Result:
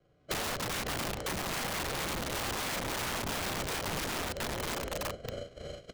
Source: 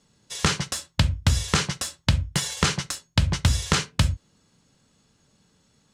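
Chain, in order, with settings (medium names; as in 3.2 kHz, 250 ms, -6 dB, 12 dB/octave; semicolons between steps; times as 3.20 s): backward echo that repeats 207 ms, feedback 43%, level -2 dB; phaser 0.93 Hz, delay 1.3 ms, feedback 37%; feedback echo behind a band-pass 322 ms, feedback 74%, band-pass 810 Hz, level -6 dB; expander -36 dBFS; graphic EQ 250/500/1000/4000 Hz +4/+8/-7/+10 dB; sample-rate reducer 1.2 kHz, jitter 0%; compression 12:1, threshold -26 dBFS, peak gain reduction 17.5 dB; formant-preserving pitch shift -5 st; distance through air 100 m; doubling 35 ms -2.5 dB; integer overflow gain 30 dB; three bands compressed up and down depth 70%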